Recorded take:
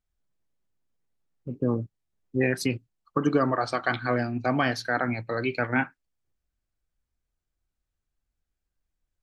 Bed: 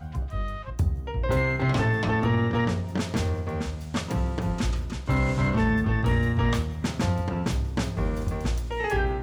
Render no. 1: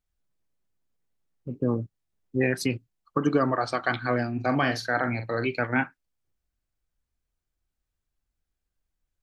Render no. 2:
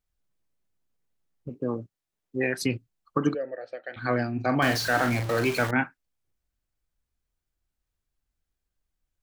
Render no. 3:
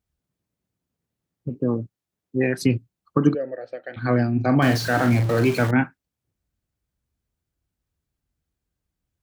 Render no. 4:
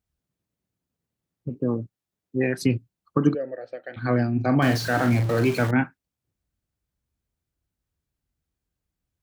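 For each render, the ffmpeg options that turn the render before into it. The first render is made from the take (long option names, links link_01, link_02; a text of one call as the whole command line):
ffmpeg -i in.wav -filter_complex "[0:a]asettb=1/sr,asplit=3[link_01][link_02][link_03];[link_01]atrim=end=4.344[link_04];[link_02]atrim=start=4.34:end=5.47,asetpts=PTS-STARTPTS,afade=type=in:duration=0.004:curve=qsin,afade=type=out:start_time=1.126:duration=0.004:curve=qsin,asplit=2[link_05][link_06];[link_06]adelay=43,volume=-8dB[link_07];[link_05][link_07]amix=inputs=2:normalize=0,atrim=end_sample=49833[link_08];[link_03]atrim=start=5.466[link_09];[link_04][link_08]acrossfade=duration=0.004:curve1=hsin:curve2=qsin[link_10];[link_10][link_09]acrossfade=duration=0.004:curve1=qsin:curve2=hsin" out.wav
ffmpeg -i in.wav -filter_complex "[0:a]asettb=1/sr,asplit=3[link_01][link_02][link_03];[link_01]atrim=end=1.494[link_04];[link_02]atrim=start=1.49:end=2.62,asetpts=PTS-STARTPTS,afade=type=in:duration=0.004:curve=qsin,afade=type=out:start_time=1.126:duration=0.004:curve=qsin,lowshelf=frequency=200:gain=-11.5[link_05];[link_03]atrim=start=2.616[link_06];[link_04][link_05]acrossfade=duration=0.004:curve1=hsin:curve2=qsin[link_07];[link_07][link_06]acrossfade=duration=0.004:curve1=qsin:curve2=hsin,asplit=3[link_08][link_09][link_10];[link_08]afade=type=out:start_time=3.33:duration=0.02[link_11];[link_09]asplit=3[link_12][link_13][link_14];[link_12]bandpass=frequency=530:width_type=q:width=8,volume=0dB[link_15];[link_13]bandpass=frequency=1840:width_type=q:width=8,volume=-6dB[link_16];[link_14]bandpass=frequency=2480:width_type=q:width=8,volume=-9dB[link_17];[link_15][link_16][link_17]amix=inputs=3:normalize=0,afade=type=in:start_time=3.33:duration=0.02,afade=type=out:start_time=3.96:duration=0.02[link_18];[link_10]afade=type=in:start_time=3.96:duration=0.02[link_19];[link_11][link_18][link_19]amix=inputs=3:normalize=0,asettb=1/sr,asplit=3[link_20][link_21][link_22];[link_20]atrim=end=4.624[link_23];[link_21]atrim=start=4.62:end=5.71,asetpts=PTS-STARTPTS,afade=type=in:duration=0.004:curve=qsin,afade=type=out:start_time=1.086:duration=0.004:curve=qsin,aeval=exprs='val(0)+0.5*0.0398*sgn(val(0))':channel_layout=same[link_24];[link_22]atrim=start=5.706[link_25];[link_23][link_24]acrossfade=duration=0.004:curve1=hsin:curve2=qsin[link_26];[link_26][link_25]acrossfade=duration=0.004:curve1=qsin:curve2=hsin" out.wav
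ffmpeg -i in.wav -af "highpass=81,lowshelf=frequency=370:gain=11.5" out.wav
ffmpeg -i in.wav -af "volume=-2dB" out.wav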